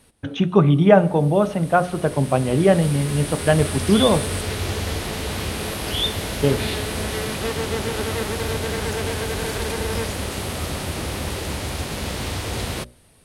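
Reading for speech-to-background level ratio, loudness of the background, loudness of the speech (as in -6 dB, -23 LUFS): 7.0 dB, -26.0 LUFS, -19.0 LUFS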